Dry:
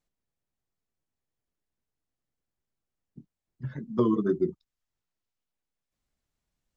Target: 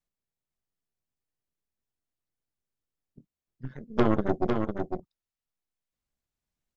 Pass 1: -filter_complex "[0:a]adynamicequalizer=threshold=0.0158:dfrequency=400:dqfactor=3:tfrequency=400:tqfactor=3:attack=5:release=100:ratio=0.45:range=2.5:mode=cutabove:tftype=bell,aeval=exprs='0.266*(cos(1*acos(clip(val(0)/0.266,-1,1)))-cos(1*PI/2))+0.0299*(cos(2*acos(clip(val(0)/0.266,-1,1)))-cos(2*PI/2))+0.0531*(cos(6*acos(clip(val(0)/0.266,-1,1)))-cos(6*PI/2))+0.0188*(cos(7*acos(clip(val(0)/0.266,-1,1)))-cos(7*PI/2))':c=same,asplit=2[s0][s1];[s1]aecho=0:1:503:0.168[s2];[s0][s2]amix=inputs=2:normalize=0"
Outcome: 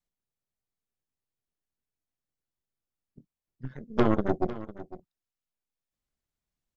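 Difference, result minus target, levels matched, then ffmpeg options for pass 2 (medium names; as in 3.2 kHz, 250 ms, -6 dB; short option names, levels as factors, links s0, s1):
echo-to-direct -10.5 dB
-filter_complex "[0:a]adynamicequalizer=threshold=0.0158:dfrequency=400:dqfactor=3:tfrequency=400:tqfactor=3:attack=5:release=100:ratio=0.45:range=2.5:mode=cutabove:tftype=bell,aeval=exprs='0.266*(cos(1*acos(clip(val(0)/0.266,-1,1)))-cos(1*PI/2))+0.0299*(cos(2*acos(clip(val(0)/0.266,-1,1)))-cos(2*PI/2))+0.0531*(cos(6*acos(clip(val(0)/0.266,-1,1)))-cos(6*PI/2))+0.0188*(cos(7*acos(clip(val(0)/0.266,-1,1)))-cos(7*PI/2))':c=same,asplit=2[s0][s1];[s1]aecho=0:1:503:0.562[s2];[s0][s2]amix=inputs=2:normalize=0"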